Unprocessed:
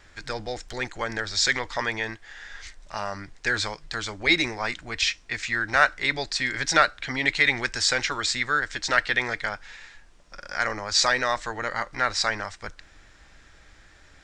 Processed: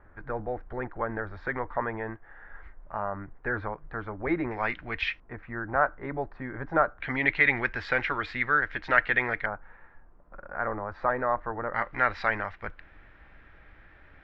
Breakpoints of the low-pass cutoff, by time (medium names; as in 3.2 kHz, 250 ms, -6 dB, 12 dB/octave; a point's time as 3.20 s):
low-pass 24 dB/octave
1.4 kHz
from 4.51 s 2.5 kHz
from 5.20 s 1.2 kHz
from 7.00 s 2.4 kHz
from 9.46 s 1.3 kHz
from 11.74 s 2.5 kHz